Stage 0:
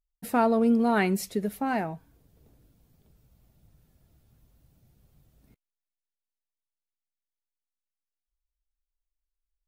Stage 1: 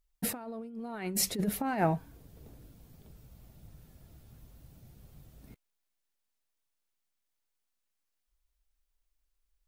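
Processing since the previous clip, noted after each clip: negative-ratio compressor -31 dBFS, ratio -0.5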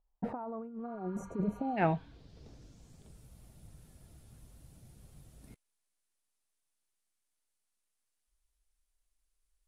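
spectral repair 0.89–1.75, 810–5700 Hz before; low-pass sweep 860 Hz -> 10000 Hz, 0.26–3.25; gain -1.5 dB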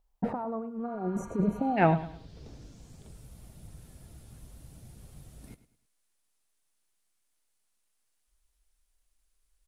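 feedback echo 0.105 s, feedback 33%, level -15 dB; gain +6 dB

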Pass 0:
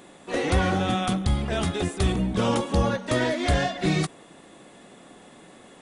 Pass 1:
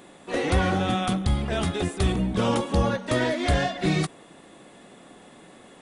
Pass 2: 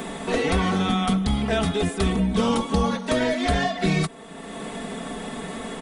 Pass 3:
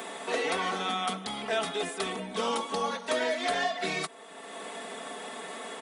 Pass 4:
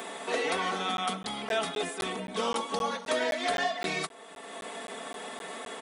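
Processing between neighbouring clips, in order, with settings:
bell 6500 Hz -2 dB
comb 4.5 ms, depth 74%; three-band squash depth 70%
HPF 470 Hz 12 dB/oct; gain -3.5 dB
crackling interface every 0.26 s, samples 512, zero, from 0.97

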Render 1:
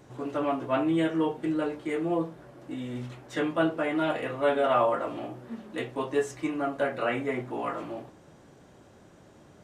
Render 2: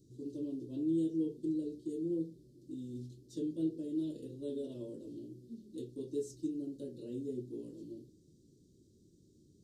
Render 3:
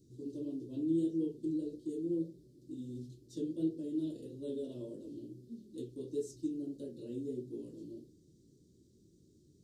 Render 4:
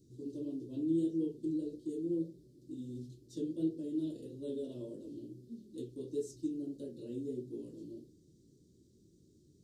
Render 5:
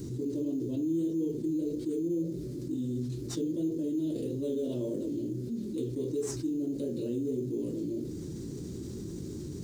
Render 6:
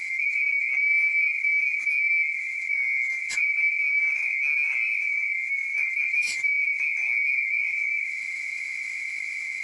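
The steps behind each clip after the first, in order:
elliptic band-stop 370–4300 Hz, stop band 40 dB; dynamic EQ 650 Hz, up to +6 dB, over -44 dBFS, Q 0.88; gain -8 dB
flange 1.6 Hz, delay 9.9 ms, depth 9.1 ms, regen -54%; gain +4 dB
nothing audible
in parallel at -10 dB: sample-rate reducer 6700 Hz, jitter 0%; on the sum: fast leveller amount 70%; gain -2 dB
band-swap scrambler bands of 2000 Hz; downsampling 22050 Hz; gain +7.5 dB

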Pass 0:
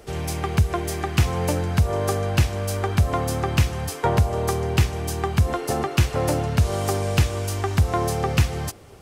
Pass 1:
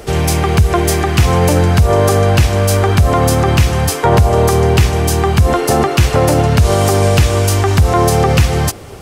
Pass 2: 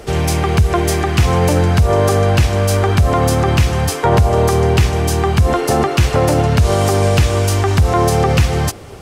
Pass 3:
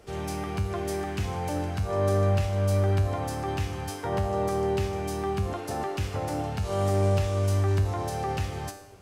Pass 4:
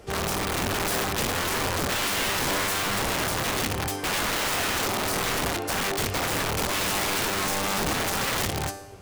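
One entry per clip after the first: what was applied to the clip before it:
maximiser +15 dB; gain -1 dB
high shelf 11000 Hz -6 dB; gain -2 dB
resonator 98 Hz, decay 0.72 s, harmonics all, mix 80%; gain -7.5 dB
wrapped overs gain 27 dB; gain +5.5 dB

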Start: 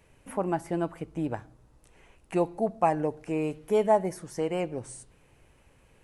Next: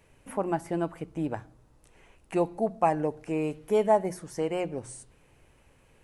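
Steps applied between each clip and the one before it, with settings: notches 60/120/180 Hz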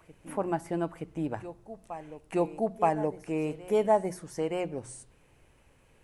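reverse echo 0.922 s -15 dB; gain -1.5 dB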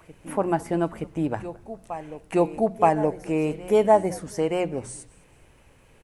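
frequency-shifting echo 0.213 s, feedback 33%, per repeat -120 Hz, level -22 dB; gain +6.5 dB

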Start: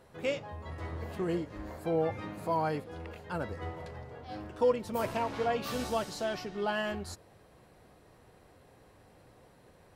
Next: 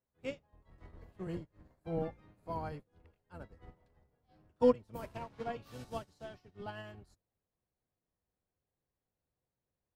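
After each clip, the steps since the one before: octaver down 1 oct, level +3 dB; upward expander 2.5:1, over -44 dBFS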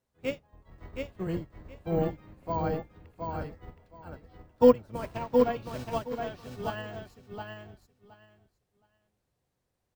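on a send: feedback echo 0.719 s, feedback 17%, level -4.5 dB; on the sum: careless resampling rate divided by 2×, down filtered, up hold; gain +8 dB

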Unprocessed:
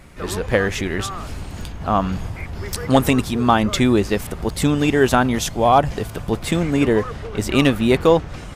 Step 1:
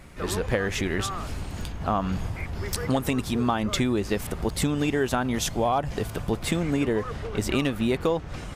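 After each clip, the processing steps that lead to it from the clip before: compressor 6:1, threshold -18 dBFS, peak gain reduction 9.5 dB; gain -2.5 dB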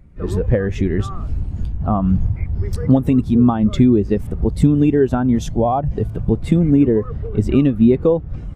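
low shelf 440 Hz +8 dB; spectral expander 1.5:1; gain +4.5 dB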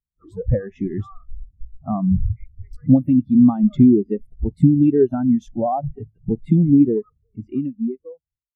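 ending faded out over 1.86 s; spectral noise reduction 20 dB; spectral expander 1.5:1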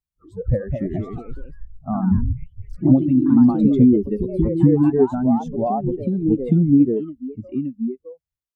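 echoes that change speed 0.265 s, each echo +2 st, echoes 3, each echo -6 dB; gain -1 dB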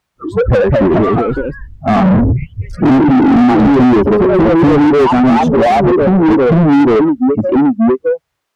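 overdrive pedal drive 40 dB, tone 1100 Hz, clips at -1.5 dBFS

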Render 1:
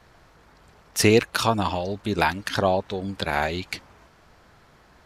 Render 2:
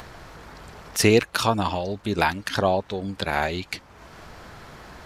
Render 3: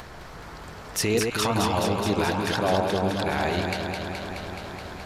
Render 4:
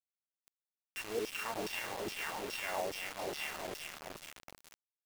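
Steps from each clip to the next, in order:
upward compressor, threshold -31 dBFS
limiter -14 dBFS, peak gain reduction 10.5 dB; echo with dull and thin repeats by turns 0.106 s, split 1300 Hz, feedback 88%, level -3.5 dB
sample sorter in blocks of 16 samples; LFO band-pass saw down 2.4 Hz 350–5000 Hz; bit-crush 6-bit; gain -6.5 dB

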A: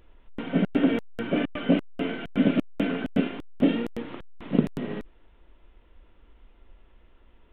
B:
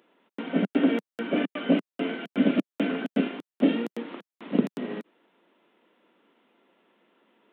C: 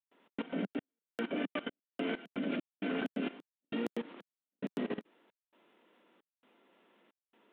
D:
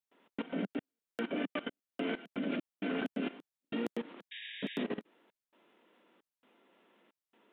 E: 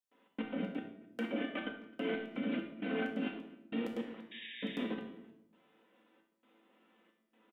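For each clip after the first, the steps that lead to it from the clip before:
steep high-pass 190 Hz 36 dB/oct
low shelf 130 Hz -4 dB; level quantiser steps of 17 dB; step gate ".xxxxxx." 133 bpm -60 dB
painted sound noise, 4.31–4.84, 1600–3800 Hz -46 dBFS
resonator 110 Hz, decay 0.46 s, harmonics all, mix 80%; speakerphone echo 0.26 s, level -23 dB; shoebox room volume 2600 m³, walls furnished, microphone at 2 m; gain +6 dB

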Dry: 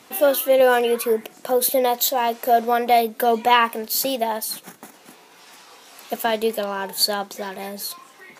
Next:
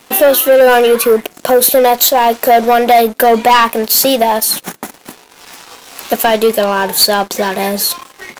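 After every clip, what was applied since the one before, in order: in parallel at +2 dB: compressor, threshold -28 dBFS, peak gain reduction 16.5 dB; on the sum: sample leveller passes 3; gain -1.5 dB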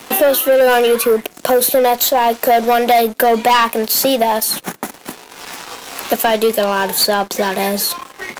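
three-band squash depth 40%; gain -3.5 dB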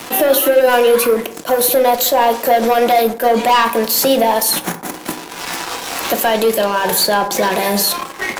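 limiter -12.5 dBFS, peak gain reduction 9.5 dB; on a send at -7 dB: reverb RT60 0.80 s, pre-delay 3 ms; on the sum: attack slew limiter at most 310 dB/s; gain +6 dB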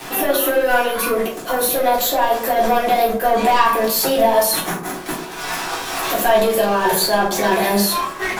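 limiter -7 dBFS, peak gain reduction 5.5 dB; shoebox room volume 170 m³, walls furnished, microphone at 3.6 m; gain -8.5 dB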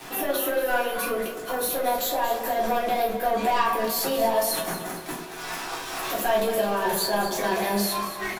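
feedback echo 0.23 s, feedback 45%, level -11 dB; gain -8.5 dB

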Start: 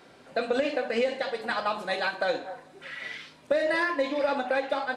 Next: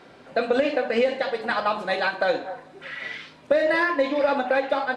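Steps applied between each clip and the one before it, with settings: high shelf 6600 Hz -12 dB; gain +5 dB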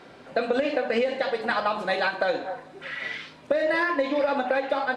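compressor, threshold -21 dBFS, peak gain reduction 6 dB; gain +1 dB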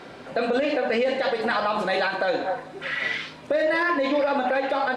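limiter -21 dBFS, peak gain reduction 9 dB; gain +6 dB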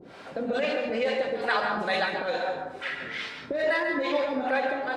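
harmonic tremolo 2.3 Hz, depth 100%, crossover 480 Hz; reverb RT60 0.55 s, pre-delay 0.122 s, DRR 4 dB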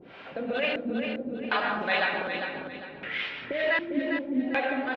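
LFO low-pass square 0.66 Hz 270–2800 Hz; feedback echo 0.401 s, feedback 33%, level -7 dB; gain -2.5 dB

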